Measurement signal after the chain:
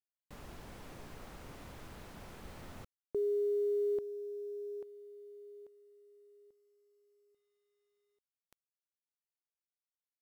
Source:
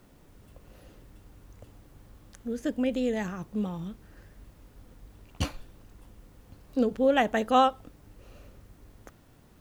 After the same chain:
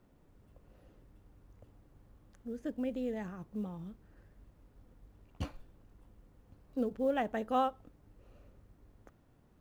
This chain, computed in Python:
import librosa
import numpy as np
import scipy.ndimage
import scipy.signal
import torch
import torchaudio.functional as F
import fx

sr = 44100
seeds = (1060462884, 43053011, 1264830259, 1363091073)

y = fx.high_shelf(x, sr, hz=2400.0, db=-11.0)
y = fx.quant_companded(y, sr, bits=8)
y = F.gain(torch.from_numpy(y), -8.0).numpy()